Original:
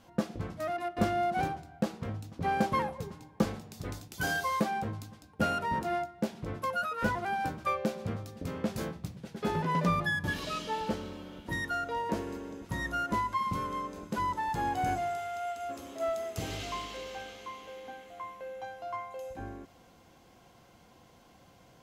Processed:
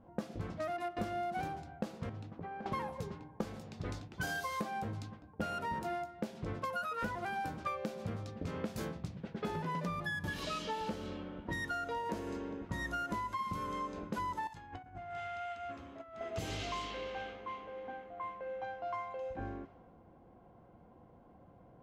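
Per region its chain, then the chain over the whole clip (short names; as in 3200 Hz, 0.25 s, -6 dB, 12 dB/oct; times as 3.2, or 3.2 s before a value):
2.09–2.66 low shelf 79 Hz -11 dB + compressor 16:1, threshold -40 dBFS
14.47–16.21 HPF 51 Hz + bell 470 Hz -12.5 dB 2.5 oct + negative-ratio compressor -44 dBFS, ratio -0.5
whole clip: de-hum 132.2 Hz, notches 8; low-pass opened by the level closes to 730 Hz, open at -31 dBFS; compressor, threshold -36 dBFS; gain +1 dB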